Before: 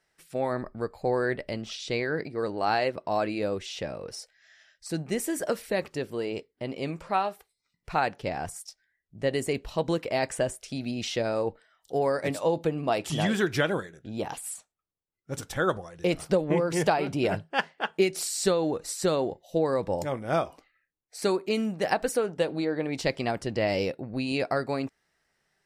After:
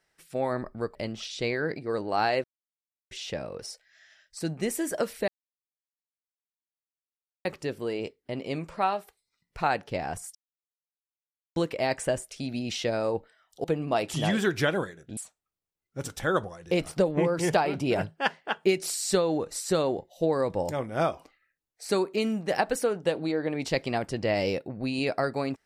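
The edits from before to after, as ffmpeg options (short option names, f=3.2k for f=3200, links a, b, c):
-filter_complex "[0:a]asplit=9[a][b][c][d][e][f][g][h][i];[a]atrim=end=0.952[j];[b]atrim=start=1.438:end=2.93,asetpts=PTS-STARTPTS,afade=t=out:st=1.488:d=0.004:c=hsin[k];[c]atrim=start=2.93:end=3.6,asetpts=PTS-STARTPTS,volume=0[l];[d]atrim=start=3.6:end=5.77,asetpts=PTS-STARTPTS,afade=t=in:d=0.004:c=hsin,afade=t=out:st=2.166:d=0.004:c=hsin,apad=pad_dur=2.17[m];[e]atrim=start=5.77:end=8.67,asetpts=PTS-STARTPTS,afade=t=in:d=0.004:c=hsin,afade=t=out:st=2.896:d=0.004:c=hsin[n];[f]atrim=start=8.67:end=9.88,asetpts=PTS-STARTPTS,volume=0[o];[g]atrim=start=9.88:end=11.962,asetpts=PTS-STARTPTS,afade=t=in:d=0.004:c=hsin[p];[h]atrim=start=12.598:end=14.132[q];[i]atrim=start=14.498[r];[k][l][m][n][o][p]concat=n=6:v=0:a=1[s];[j][s]acrossfade=d=0.004:c1=hsin:c2=hsin[t];[t][q]acrossfade=d=0.004:c1=hsin:c2=hsin[u];[u][r]acrossfade=d=0.004:c1=hsin:c2=hsin"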